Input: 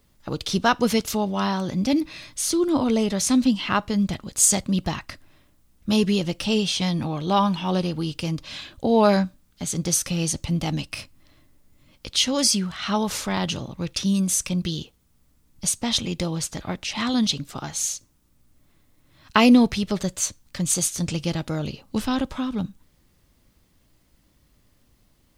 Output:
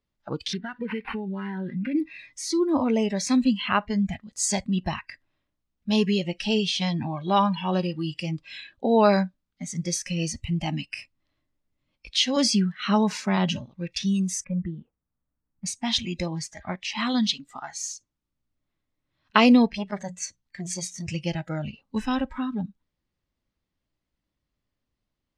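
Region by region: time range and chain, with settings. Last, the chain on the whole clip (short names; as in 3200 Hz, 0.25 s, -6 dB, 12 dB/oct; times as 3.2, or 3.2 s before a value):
0.53–1.95 compressor 16:1, threshold -22 dBFS + band shelf 860 Hz -8.5 dB 1.3 oct + decimation joined by straight lines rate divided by 6×
7.73–8.23 G.711 law mismatch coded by mu + HPF 42 Hz
12.36–13.58 HPF 150 Hz 24 dB/oct + expander -32 dBFS + low shelf 260 Hz +10 dB
14.44–15.66 LPF 1800 Hz 24 dB/oct + notch 390 Hz, Q 9.3
19.69–21.07 high shelf 10000 Hz -4.5 dB + notches 60/120/180 Hz + core saturation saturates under 950 Hz
whole clip: LPF 4900 Hz 12 dB/oct; spectral noise reduction 18 dB; low shelf 340 Hz -3 dB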